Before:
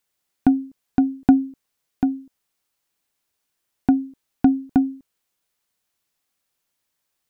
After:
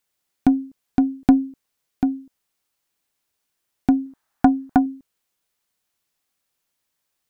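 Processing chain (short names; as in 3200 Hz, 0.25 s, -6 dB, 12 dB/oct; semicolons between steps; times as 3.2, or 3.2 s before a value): tracing distortion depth 0.12 ms; 4.06–4.86 band shelf 1100 Hz +10 dB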